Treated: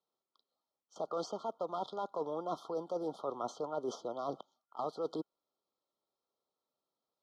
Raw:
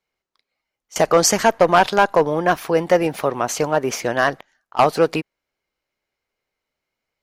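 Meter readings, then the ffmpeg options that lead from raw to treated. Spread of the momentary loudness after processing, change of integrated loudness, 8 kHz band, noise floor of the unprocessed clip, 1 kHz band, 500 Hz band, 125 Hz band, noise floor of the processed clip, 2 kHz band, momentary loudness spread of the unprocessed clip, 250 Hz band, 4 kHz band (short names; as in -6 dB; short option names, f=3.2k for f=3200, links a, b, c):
5 LU, -21.5 dB, -32.5 dB, -83 dBFS, -21.5 dB, -20.0 dB, -25.5 dB, under -85 dBFS, under -40 dB, 8 LU, -20.0 dB, -25.0 dB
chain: -filter_complex "[0:a]acrossover=split=340|3500[a][b][c];[a]acompressor=threshold=-31dB:ratio=4[d];[b]acompressor=threshold=-17dB:ratio=4[e];[c]acompressor=threshold=-39dB:ratio=4[f];[d][e][f]amix=inputs=3:normalize=0,highpass=200,lowpass=4.6k,areverse,acompressor=threshold=-27dB:ratio=16,areverse,afftfilt=real='re*(1-between(b*sr/4096,1400,3100))':imag='im*(1-between(b*sr/4096,1400,3100))':win_size=4096:overlap=0.75,volume=-6dB"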